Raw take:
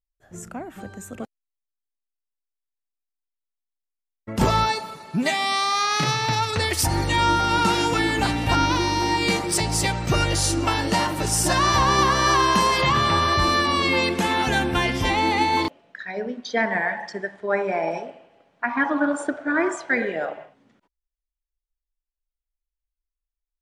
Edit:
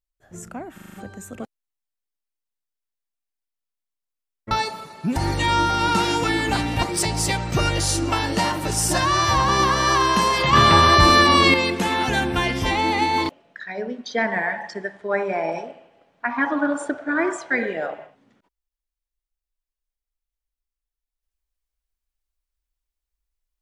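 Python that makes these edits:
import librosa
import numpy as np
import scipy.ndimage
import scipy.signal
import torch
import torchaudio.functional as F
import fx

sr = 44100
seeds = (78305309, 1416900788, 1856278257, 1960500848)

y = fx.edit(x, sr, fx.stutter(start_s=0.74, slice_s=0.04, count=6),
    fx.cut(start_s=4.31, length_s=0.3),
    fx.cut(start_s=5.26, length_s=1.6),
    fx.cut(start_s=8.53, length_s=0.85),
    fx.stretch_span(start_s=11.56, length_s=0.32, factor=1.5),
    fx.clip_gain(start_s=12.92, length_s=1.01, db=6.5), tone=tone)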